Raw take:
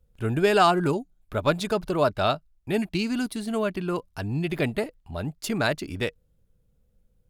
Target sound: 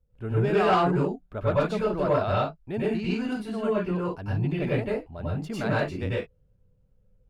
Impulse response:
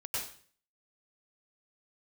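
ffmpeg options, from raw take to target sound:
-filter_complex "[0:a]lowpass=frequency=1300:poles=1[link_01];[1:a]atrim=start_sample=2205,afade=type=out:start_time=0.22:duration=0.01,atrim=end_sample=10143[link_02];[link_01][link_02]afir=irnorm=-1:irlink=0,asoftclip=type=tanh:threshold=-14dB"

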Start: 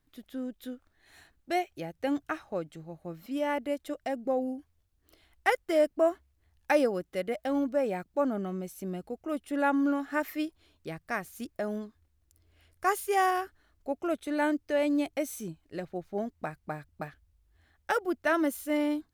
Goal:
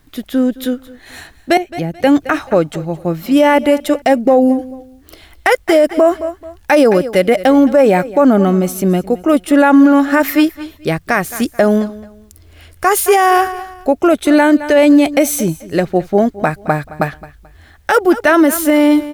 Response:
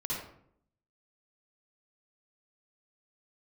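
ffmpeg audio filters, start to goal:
-filter_complex "[0:a]asettb=1/sr,asplit=3[link_01][link_02][link_03];[link_01]atrim=end=1.574[link_04];[link_02]atrim=start=1.57:end=2.04,asetpts=PTS-STARTPTS,afade=type=in:duration=0.004:curve=qsin,afade=type=out:start_time=0.466:duration=0.004:curve=qsin,acrossover=split=290[link_05][link_06];[link_06]acompressor=threshold=-49dB:ratio=3[link_07];[link_05][link_07]amix=inputs=2:normalize=0[link_08];[link_03]atrim=start=2.036[link_09];[link_04][link_08]acrossfade=duration=0.004:curve1=hsin:curve2=qsin[link_10];[link_10][link_09]acrossfade=duration=0.004:curve1=qsin:curve2=hsin,aecho=1:1:217|434:0.112|0.0314,alimiter=level_in=23.5dB:limit=-1dB:release=50:level=0:latency=1,volume=-1dB"

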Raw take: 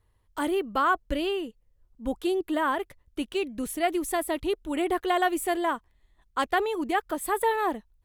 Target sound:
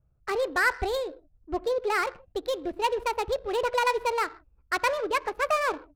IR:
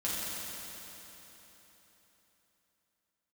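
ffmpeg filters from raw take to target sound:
-filter_complex "[0:a]asetrate=59535,aresample=44100,asplit=2[link_01][link_02];[1:a]atrim=start_sample=2205,atrim=end_sample=6615,adelay=14[link_03];[link_02][link_03]afir=irnorm=-1:irlink=0,volume=-18.5dB[link_04];[link_01][link_04]amix=inputs=2:normalize=0,adynamicsmooth=sensitivity=8:basefreq=810"

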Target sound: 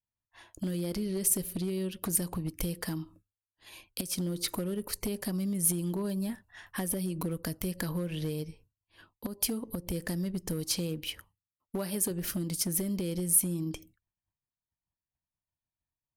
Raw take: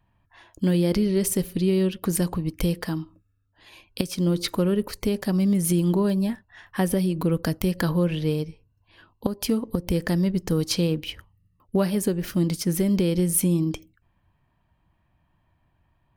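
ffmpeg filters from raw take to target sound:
ffmpeg -i in.wav -filter_complex "[0:a]asettb=1/sr,asplit=3[link_01][link_02][link_03];[link_01]atrim=end=11.074[link_04];[link_02]atrim=start=11.07:end=12.11,asetpts=PTS-STARTPTS,afade=type=in:duration=0.004:curve=qsin,afade=type=out:start_time=1.036:duration=0.004:curve=qsin,lowshelf=frequency=160:gain=-9[link_05];[link_03]atrim=start=12.106[link_06];[link_04][link_05]acrossfade=duration=0.004:curve1=hsin:curve2=qsin[link_07];[link_07][link_06]acrossfade=duration=0.004:curve1=qsin:curve2=hsin,acompressor=threshold=-27dB:ratio=6,asoftclip=type=hard:threshold=-24dB,equalizer=frequency=11000:width_type=o:width=1.3:gain=11.5,agate=range=-33dB:threshold=-49dB:ratio=3:detection=peak,volume=-3dB" out.wav

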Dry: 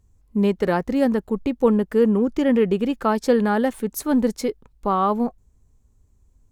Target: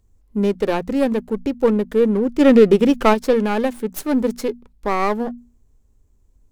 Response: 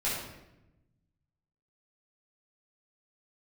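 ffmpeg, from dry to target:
-filter_complex "[0:a]acrossover=split=650[link_01][link_02];[link_02]aeval=exprs='max(val(0),0)':channel_layout=same[link_03];[link_01][link_03]amix=inputs=2:normalize=0,equalizer=frequency=110:width=0.59:gain=-6.5,bandreject=frequency=60:width_type=h:width=6,bandreject=frequency=120:width_type=h:width=6,bandreject=frequency=180:width_type=h:width=6,bandreject=frequency=240:width_type=h:width=6,asplit=3[link_04][link_05][link_06];[link_04]afade=type=out:start_time=2.39:duration=0.02[link_07];[link_05]acontrast=75,afade=type=in:start_time=2.39:duration=0.02,afade=type=out:start_time=3.13:duration=0.02[link_08];[link_06]afade=type=in:start_time=3.13:duration=0.02[link_09];[link_07][link_08][link_09]amix=inputs=3:normalize=0,volume=4dB"

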